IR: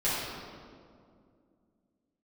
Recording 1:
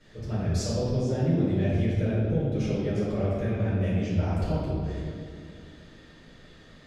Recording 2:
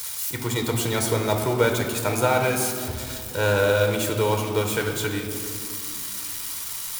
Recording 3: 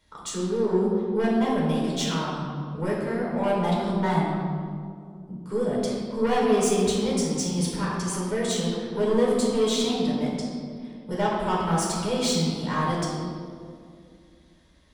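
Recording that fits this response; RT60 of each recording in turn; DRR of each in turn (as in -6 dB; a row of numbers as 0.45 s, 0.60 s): 1; 2.3 s, 2.3 s, 2.3 s; -12.0 dB, 2.5 dB, -5.0 dB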